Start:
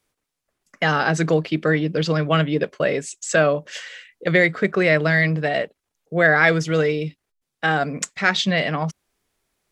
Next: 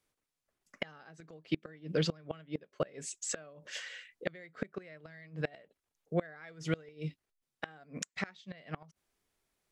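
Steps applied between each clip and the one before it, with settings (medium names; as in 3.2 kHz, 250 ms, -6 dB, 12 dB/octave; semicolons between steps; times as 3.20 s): inverted gate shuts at -11 dBFS, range -27 dB; trim -8 dB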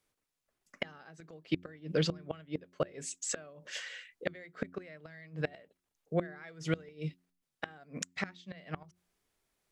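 de-hum 89.1 Hz, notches 4; trim +1 dB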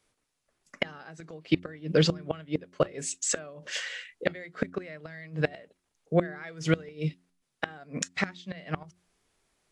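trim +7.5 dB; AAC 64 kbps 24 kHz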